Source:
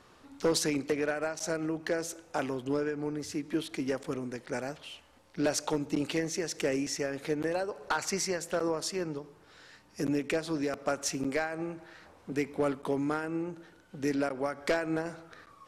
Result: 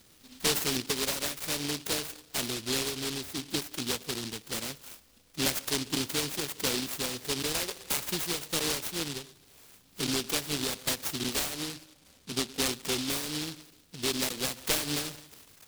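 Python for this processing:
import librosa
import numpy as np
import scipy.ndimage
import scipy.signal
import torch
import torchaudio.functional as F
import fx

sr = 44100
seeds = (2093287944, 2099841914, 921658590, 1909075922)

y = fx.spec_erase(x, sr, start_s=11.55, length_s=1.12, low_hz=860.0, high_hz=12000.0)
y = fx.pitch_keep_formants(y, sr, semitones=-1.5)
y = fx.noise_mod_delay(y, sr, seeds[0], noise_hz=3800.0, depth_ms=0.43)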